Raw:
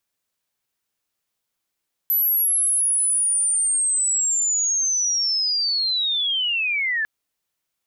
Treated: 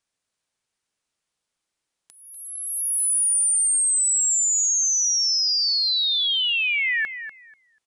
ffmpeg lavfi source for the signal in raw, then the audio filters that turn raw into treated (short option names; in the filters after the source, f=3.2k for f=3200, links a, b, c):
-f lavfi -i "aevalsrc='pow(10,(-16.5-3.5*t/4.95)/20)*sin(2*PI*(12000*t-10300*t*t/(2*4.95)))':d=4.95:s=44100"
-filter_complex "[0:a]asplit=2[a][b];[b]aecho=0:1:244|488|732:0.282|0.0535|0.0102[c];[a][c]amix=inputs=2:normalize=0,aresample=22050,aresample=44100"